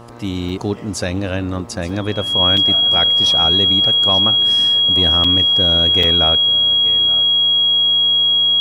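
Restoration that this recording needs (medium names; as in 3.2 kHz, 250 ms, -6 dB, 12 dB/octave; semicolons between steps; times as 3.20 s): de-hum 118.1 Hz, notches 11; band-stop 3.3 kHz, Q 30; interpolate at 0.49/1.89/2.57/5.24/6.03 s, 4.4 ms; inverse comb 879 ms -17 dB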